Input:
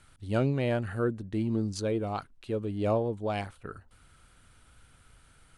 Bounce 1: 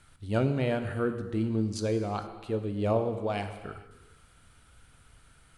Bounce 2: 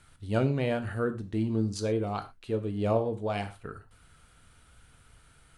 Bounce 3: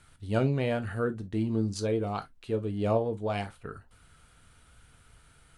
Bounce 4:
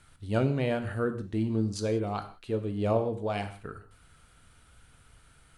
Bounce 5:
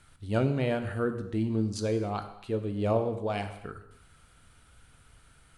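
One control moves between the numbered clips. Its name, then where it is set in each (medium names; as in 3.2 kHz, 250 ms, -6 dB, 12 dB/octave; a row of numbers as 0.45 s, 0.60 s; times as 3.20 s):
gated-style reverb, gate: 490 ms, 140 ms, 80 ms, 210 ms, 320 ms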